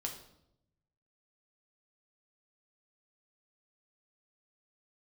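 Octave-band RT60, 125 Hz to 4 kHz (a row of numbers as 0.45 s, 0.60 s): 1.5 s, 1.1 s, 0.90 s, 0.70 s, 0.60 s, 0.60 s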